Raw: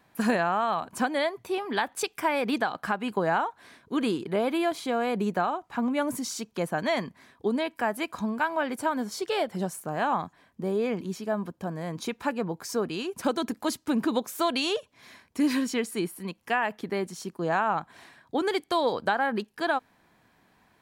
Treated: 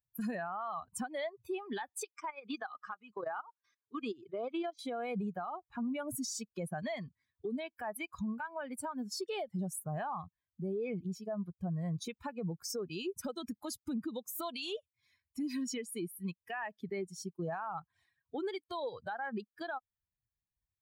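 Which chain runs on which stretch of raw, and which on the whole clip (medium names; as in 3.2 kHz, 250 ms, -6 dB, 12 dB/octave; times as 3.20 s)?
2.04–4.79 s: level held to a coarse grid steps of 13 dB + cabinet simulation 140–7600 Hz, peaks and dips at 170 Hz -9 dB, 1.2 kHz +6 dB, 6 kHz +7 dB
whole clip: expander on every frequency bin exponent 2; compression 10:1, threshold -36 dBFS; peak limiter -36 dBFS; trim +5.5 dB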